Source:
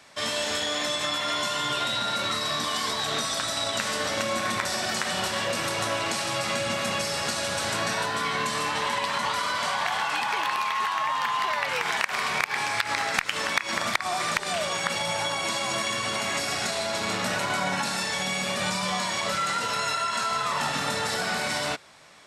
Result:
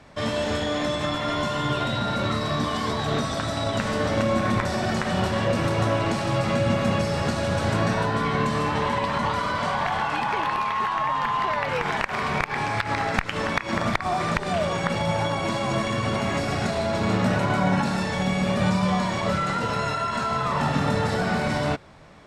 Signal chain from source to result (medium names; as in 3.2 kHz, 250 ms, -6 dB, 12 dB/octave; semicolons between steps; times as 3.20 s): tilt EQ -4 dB/octave; trim +2.5 dB